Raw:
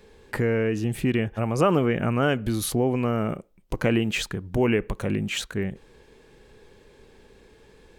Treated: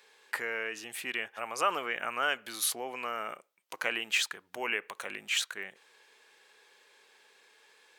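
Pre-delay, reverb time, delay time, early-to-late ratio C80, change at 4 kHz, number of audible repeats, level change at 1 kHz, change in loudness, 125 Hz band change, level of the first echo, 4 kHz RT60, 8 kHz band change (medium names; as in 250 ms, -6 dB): no reverb, no reverb, no echo, no reverb, 0.0 dB, no echo, -3.5 dB, -8.0 dB, under -35 dB, no echo, no reverb, 0.0 dB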